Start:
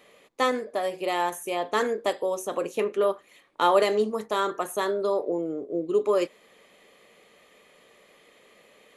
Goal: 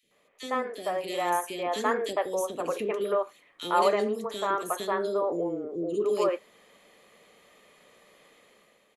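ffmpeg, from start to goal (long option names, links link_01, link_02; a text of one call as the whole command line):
ffmpeg -i in.wav -filter_complex "[0:a]acrossover=split=410|2500[link_01][link_02][link_03];[link_01]adelay=30[link_04];[link_02]adelay=110[link_05];[link_04][link_05][link_03]amix=inputs=3:normalize=0,dynaudnorm=framelen=130:gausssize=9:maxgain=9.5dB,volume=-9dB" out.wav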